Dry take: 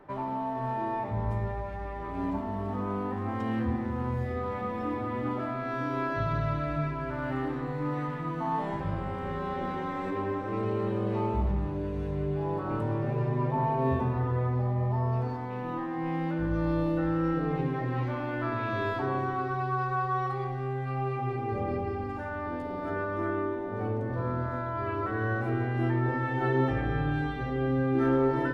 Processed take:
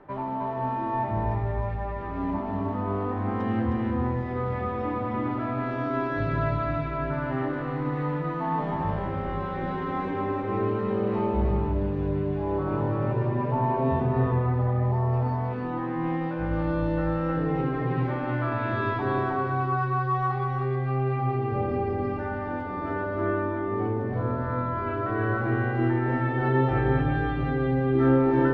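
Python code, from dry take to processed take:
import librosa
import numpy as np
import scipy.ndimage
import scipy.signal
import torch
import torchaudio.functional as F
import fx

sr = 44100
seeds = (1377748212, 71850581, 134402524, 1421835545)

p1 = fx.air_absorb(x, sr, metres=150.0)
p2 = p1 + fx.echo_single(p1, sr, ms=313, db=-3.5, dry=0)
y = F.gain(torch.from_numpy(p2), 2.5).numpy()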